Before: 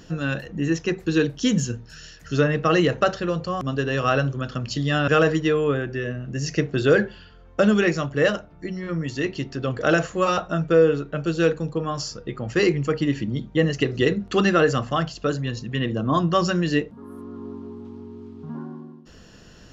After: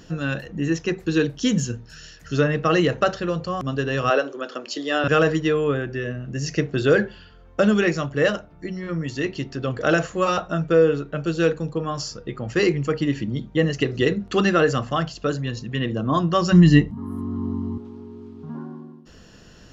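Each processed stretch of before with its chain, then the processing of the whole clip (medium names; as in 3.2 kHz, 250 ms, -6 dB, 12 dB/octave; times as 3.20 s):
4.10–5.04 s: high-pass 320 Hz 24 dB/octave + peaking EQ 410 Hz +5 dB 1.6 oct
16.52–17.78 s: bass shelf 330 Hz +12 dB + comb 1 ms, depth 70%
whole clip: none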